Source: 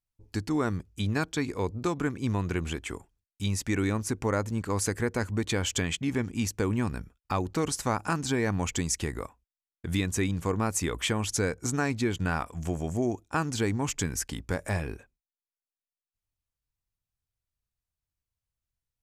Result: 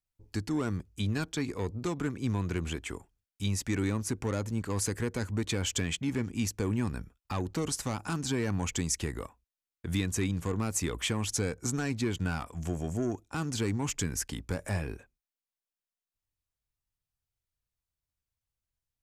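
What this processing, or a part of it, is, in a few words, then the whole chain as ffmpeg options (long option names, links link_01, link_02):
one-band saturation: -filter_complex "[0:a]acrossover=split=290|3000[link_01][link_02][link_03];[link_02]asoftclip=type=tanh:threshold=-29.5dB[link_04];[link_01][link_04][link_03]amix=inputs=3:normalize=0,volume=-1.5dB"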